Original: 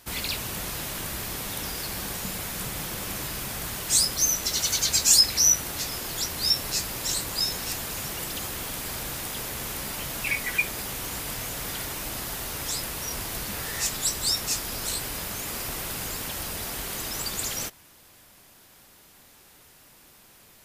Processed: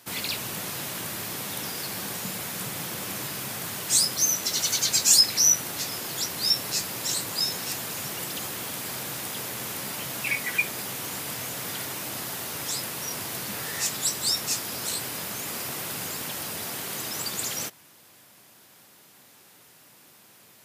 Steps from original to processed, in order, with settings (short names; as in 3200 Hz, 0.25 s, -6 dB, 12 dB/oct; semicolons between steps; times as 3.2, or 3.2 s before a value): HPF 110 Hz 24 dB/oct